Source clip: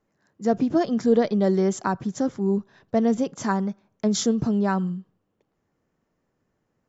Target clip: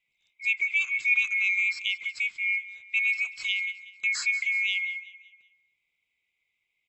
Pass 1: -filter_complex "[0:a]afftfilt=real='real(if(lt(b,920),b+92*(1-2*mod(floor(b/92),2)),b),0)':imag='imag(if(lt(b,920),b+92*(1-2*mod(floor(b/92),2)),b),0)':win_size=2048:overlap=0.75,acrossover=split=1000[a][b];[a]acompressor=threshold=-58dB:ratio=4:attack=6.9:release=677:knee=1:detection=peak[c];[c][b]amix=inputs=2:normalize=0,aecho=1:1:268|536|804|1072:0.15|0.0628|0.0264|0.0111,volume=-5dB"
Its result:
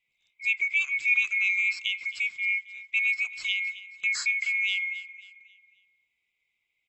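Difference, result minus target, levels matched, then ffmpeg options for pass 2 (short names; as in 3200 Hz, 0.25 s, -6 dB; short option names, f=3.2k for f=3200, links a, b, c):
echo 82 ms late
-filter_complex "[0:a]afftfilt=real='real(if(lt(b,920),b+92*(1-2*mod(floor(b/92),2)),b),0)':imag='imag(if(lt(b,920),b+92*(1-2*mod(floor(b/92),2)),b),0)':win_size=2048:overlap=0.75,acrossover=split=1000[a][b];[a]acompressor=threshold=-58dB:ratio=4:attack=6.9:release=677:knee=1:detection=peak[c];[c][b]amix=inputs=2:normalize=0,aecho=1:1:186|372|558|744:0.15|0.0628|0.0264|0.0111,volume=-5dB"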